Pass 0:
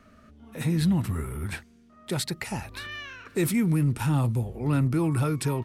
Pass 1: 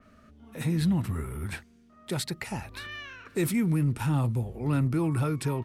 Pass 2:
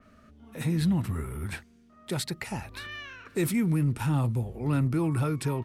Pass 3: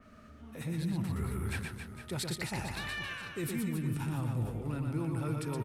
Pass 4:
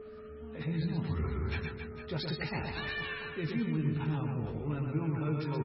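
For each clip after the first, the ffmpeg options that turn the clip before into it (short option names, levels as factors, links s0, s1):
-af "adynamicequalizer=threshold=0.00447:dfrequency=3600:dqfactor=0.7:tfrequency=3600:tqfactor=0.7:attack=5:release=100:ratio=0.375:range=2:mode=cutabove:tftype=highshelf,volume=0.794"
-af anull
-af "areverse,acompressor=threshold=0.02:ratio=6,areverse,aecho=1:1:120|270|457.5|691.9|984.8:0.631|0.398|0.251|0.158|0.1"
-filter_complex "[0:a]aeval=exprs='val(0)+0.00891*sin(2*PI*430*n/s)':c=same,asplit=2[s0][s1];[s1]adelay=13,volume=0.531[s2];[s0][s2]amix=inputs=2:normalize=0" -ar 22050 -c:a libmp3lame -b:a 16k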